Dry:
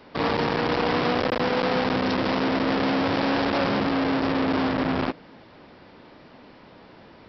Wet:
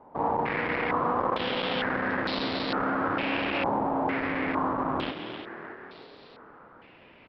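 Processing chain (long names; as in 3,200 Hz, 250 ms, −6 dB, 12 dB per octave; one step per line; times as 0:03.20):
echo with shifted repeats 308 ms, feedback 60%, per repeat +36 Hz, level −9 dB
regular buffer underruns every 0.14 s, samples 128, zero, from 0:00.99
low-pass on a step sequencer 2.2 Hz 880–4,100 Hz
level −8 dB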